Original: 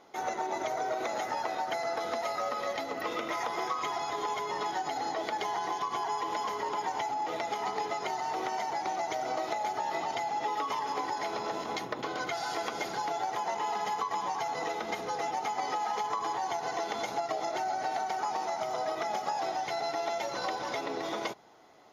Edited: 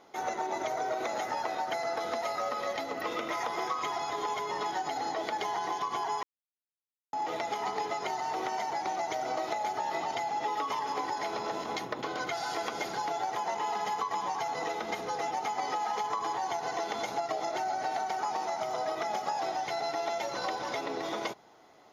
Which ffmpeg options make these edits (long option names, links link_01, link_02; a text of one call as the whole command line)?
ffmpeg -i in.wav -filter_complex "[0:a]asplit=3[link_01][link_02][link_03];[link_01]atrim=end=6.23,asetpts=PTS-STARTPTS,afade=type=out:start_time=6.226:duration=0.004:curve=hsin[link_04];[link_02]atrim=start=6.23:end=7.13,asetpts=PTS-STARTPTS,volume=0[link_05];[link_03]atrim=start=7.13,asetpts=PTS-STARTPTS,afade=type=in:duration=0.004:curve=hsin[link_06];[link_04][link_05][link_06]concat=n=3:v=0:a=1" out.wav